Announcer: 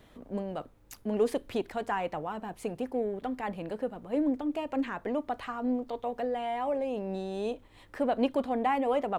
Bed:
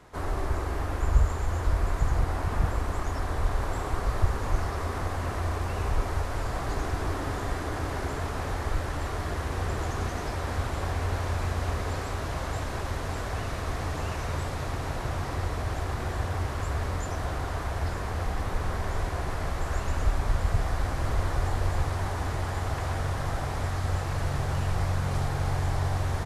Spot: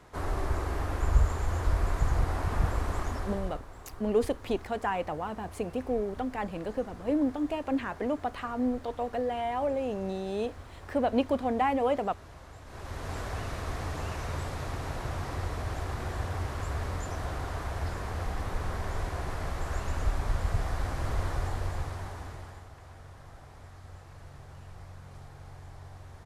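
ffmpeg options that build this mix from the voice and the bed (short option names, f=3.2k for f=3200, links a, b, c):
-filter_complex "[0:a]adelay=2950,volume=1dB[a];[1:a]volume=12dB,afade=t=out:st=2.99:d=0.63:silence=0.16788,afade=t=in:st=12.64:d=0.52:silence=0.211349,afade=t=out:st=21.27:d=1.42:silence=0.158489[b];[a][b]amix=inputs=2:normalize=0"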